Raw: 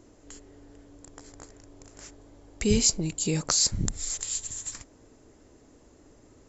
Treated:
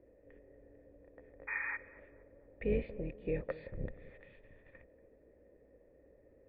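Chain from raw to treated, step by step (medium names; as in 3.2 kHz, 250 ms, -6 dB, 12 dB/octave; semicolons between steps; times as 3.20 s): octave divider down 2 oct, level +2 dB; painted sound noise, 1.47–1.77 s, 810–2500 Hz -29 dBFS; cascade formant filter e; on a send: tape echo 236 ms, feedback 53%, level -16 dB, low-pass 1.5 kHz; on the sum: tape noise reduction on one side only decoder only; trim +4.5 dB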